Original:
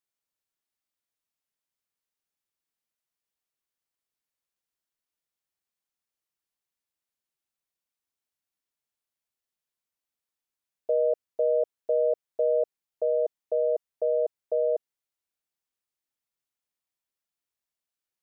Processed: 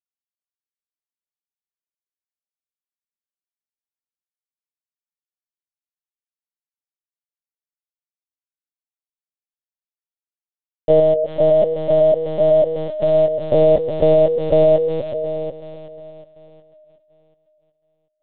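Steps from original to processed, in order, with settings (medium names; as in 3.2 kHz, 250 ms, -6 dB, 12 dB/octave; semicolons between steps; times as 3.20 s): level rider gain up to 13 dB; bit crusher 5-bit; 11.00–13.53 s: comb of notches 510 Hz; two-band feedback delay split 600 Hz, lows 248 ms, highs 368 ms, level -6 dB; LPC vocoder at 8 kHz pitch kept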